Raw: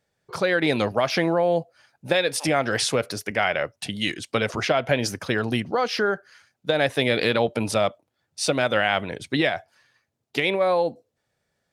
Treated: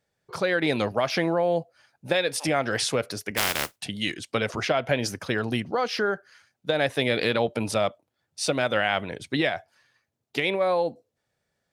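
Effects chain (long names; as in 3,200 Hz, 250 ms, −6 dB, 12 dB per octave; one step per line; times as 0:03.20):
0:03.36–0:03.77: compressing power law on the bin magnitudes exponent 0.21
level −2.5 dB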